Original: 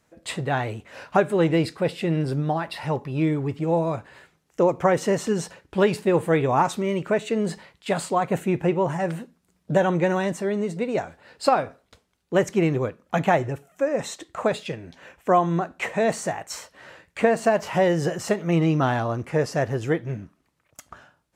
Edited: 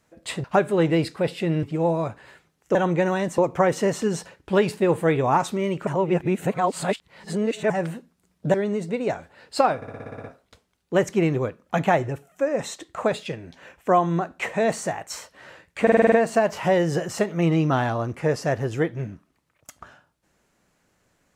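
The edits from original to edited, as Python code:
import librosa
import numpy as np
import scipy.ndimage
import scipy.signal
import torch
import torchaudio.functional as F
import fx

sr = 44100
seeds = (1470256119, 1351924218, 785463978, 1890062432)

y = fx.edit(x, sr, fx.cut(start_s=0.44, length_s=0.61),
    fx.cut(start_s=2.24, length_s=1.27),
    fx.reverse_span(start_s=7.12, length_s=1.83),
    fx.move(start_s=9.79, length_s=0.63, to_s=4.63),
    fx.stutter(start_s=11.64, slice_s=0.06, count=9),
    fx.stutter(start_s=17.22, slice_s=0.05, count=7), tone=tone)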